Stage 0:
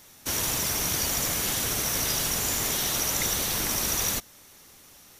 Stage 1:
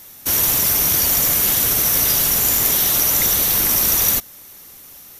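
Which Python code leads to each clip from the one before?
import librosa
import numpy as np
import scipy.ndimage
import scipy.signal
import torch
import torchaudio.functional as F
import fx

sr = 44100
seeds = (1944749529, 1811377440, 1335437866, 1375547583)

y = fx.peak_eq(x, sr, hz=13000.0, db=12.0, octaves=0.47)
y = y * librosa.db_to_amplitude(5.5)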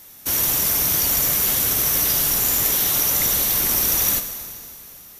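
y = fx.rev_plate(x, sr, seeds[0], rt60_s=2.5, hf_ratio=0.95, predelay_ms=0, drr_db=7.5)
y = y * librosa.db_to_amplitude(-3.5)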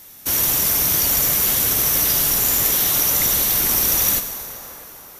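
y = fx.echo_wet_bandpass(x, sr, ms=648, feedback_pct=50, hz=790.0, wet_db=-11.5)
y = y * librosa.db_to_amplitude(1.5)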